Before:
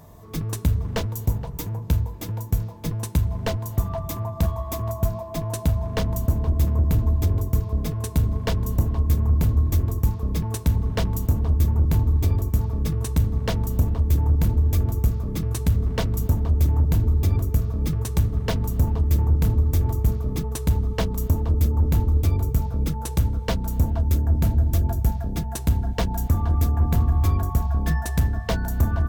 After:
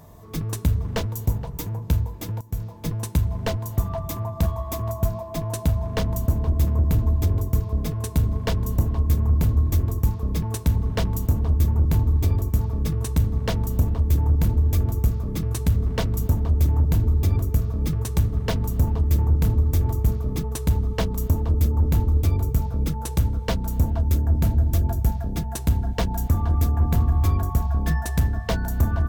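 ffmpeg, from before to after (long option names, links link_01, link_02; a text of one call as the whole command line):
ffmpeg -i in.wav -filter_complex "[0:a]asplit=2[link_01][link_02];[link_01]atrim=end=2.41,asetpts=PTS-STARTPTS,afade=type=out:start_time=2.406:duration=0.004:curve=hsin:silence=0.11885[link_03];[link_02]atrim=start=2.41,asetpts=PTS-STARTPTS,afade=type=in:duration=0.47:curve=qsin:silence=0.11885[link_04];[link_03][link_04]concat=n=2:v=0:a=1" out.wav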